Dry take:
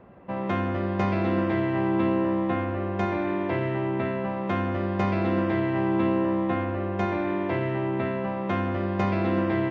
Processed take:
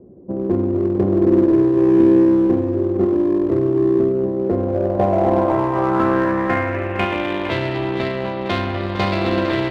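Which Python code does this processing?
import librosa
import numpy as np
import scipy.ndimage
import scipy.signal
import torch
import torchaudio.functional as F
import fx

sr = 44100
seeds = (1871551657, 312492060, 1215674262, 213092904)

p1 = fx.cheby_harmonics(x, sr, harmonics=(3, 5, 7), levels_db=(-30, -36, -22), full_scale_db=-11.5)
p2 = fx.dynamic_eq(p1, sr, hz=190.0, q=0.94, threshold_db=-38.0, ratio=4.0, max_db=-5)
p3 = fx.filter_sweep_lowpass(p2, sr, from_hz=370.0, to_hz=4200.0, start_s=4.28, end_s=7.64, q=3.2)
p4 = fx.peak_eq(p3, sr, hz=1300.0, db=-3.5, octaves=2.0)
p5 = np.clip(p4, -10.0 ** (-27.5 / 20.0), 10.0 ** (-27.5 / 20.0))
p6 = p4 + (p5 * 10.0 ** (-5.5 / 20.0))
p7 = p6 + 10.0 ** (-10.5 / 20.0) * np.pad(p6, (int(457 * sr / 1000.0), 0))[:len(p6)]
y = p7 * 10.0 ** (7.0 / 20.0)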